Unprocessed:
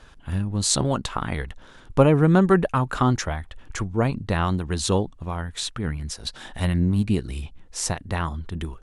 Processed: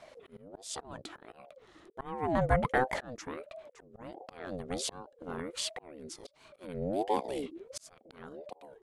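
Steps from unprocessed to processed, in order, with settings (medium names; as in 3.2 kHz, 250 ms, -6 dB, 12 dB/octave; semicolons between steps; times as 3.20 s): slow attack 779 ms; ring modulator with a swept carrier 480 Hz, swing 35%, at 1.4 Hz; trim -2.5 dB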